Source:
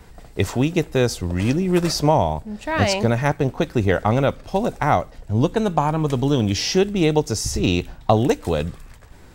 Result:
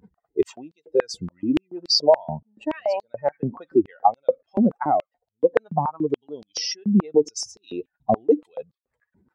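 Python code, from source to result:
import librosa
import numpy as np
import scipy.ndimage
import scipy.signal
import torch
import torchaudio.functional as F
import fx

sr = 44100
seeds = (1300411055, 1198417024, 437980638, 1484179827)

y = fx.spec_expand(x, sr, power=2.4)
y = fx.filter_held_highpass(y, sr, hz=7.0, low_hz=210.0, high_hz=4300.0)
y = y * librosa.db_to_amplitude(-3.5)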